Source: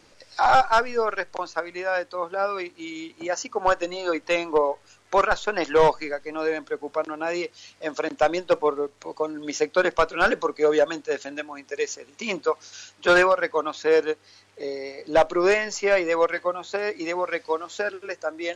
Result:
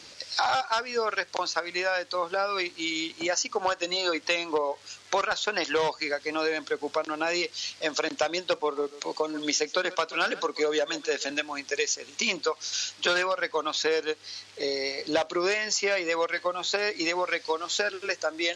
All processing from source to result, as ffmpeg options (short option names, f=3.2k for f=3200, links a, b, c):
-filter_complex "[0:a]asettb=1/sr,asplit=3[a][b][c];[a]atrim=end=8.604[d];[b]atrim=start=8.6:end=11.3,asetpts=PTS-STARTPTS,afade=t=in:d=0.004:c=qsin,afade=t=out:st=2.696:d=0.004:c=qsin,highpass=f=150:w=0.5412,highpass=f=150:w=1.3066,aecho=1:1:134:0.0891,atrim=end_sample=119070[e];[c]atrim=start=11.296[f];[d][e]acrossfade=d=0.004:c1=hsin:c2=qsin[g];[g][f]acrossfade=d=0.004:c1=qsin:c2=hsin,highpass=59,equalizer=f=4.5k:t=o:w=2:g=12.5,acompressor=threshold=-25dB:ratio=6,volume=1.5dB"